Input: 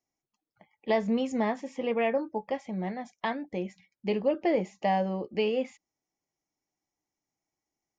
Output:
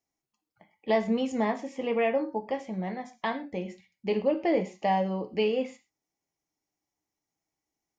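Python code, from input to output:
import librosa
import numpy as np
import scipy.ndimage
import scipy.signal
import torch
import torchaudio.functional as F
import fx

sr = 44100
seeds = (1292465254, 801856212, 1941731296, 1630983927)

y = fx.rev_gated(x, sr, seeds[0], gate_ms=150, shape='falling', drr_db=8.0)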